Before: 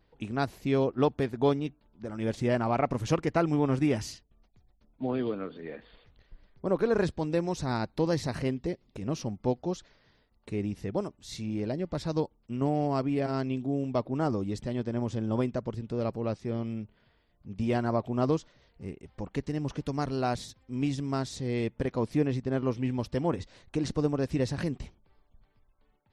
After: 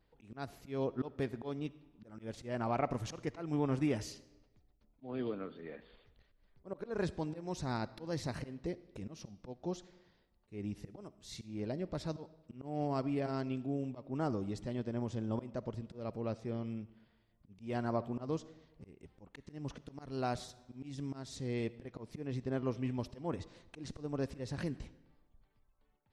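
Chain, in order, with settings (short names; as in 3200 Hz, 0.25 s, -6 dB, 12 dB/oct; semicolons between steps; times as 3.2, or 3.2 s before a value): auto swell 0.205 s; on a send: reverb RT60 1.1 s, pre-delay 20 ms, DRR 17.5 dB; on the sum: gain -6.5 dB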